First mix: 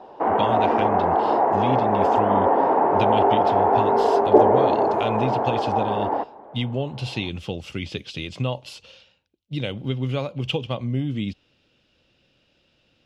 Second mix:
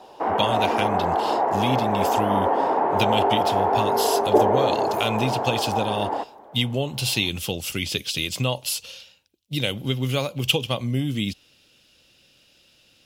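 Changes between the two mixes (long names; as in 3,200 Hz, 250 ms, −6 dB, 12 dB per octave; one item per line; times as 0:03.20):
background −4.5 dB
master: remove head-to-tape spacing loss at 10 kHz 25 dB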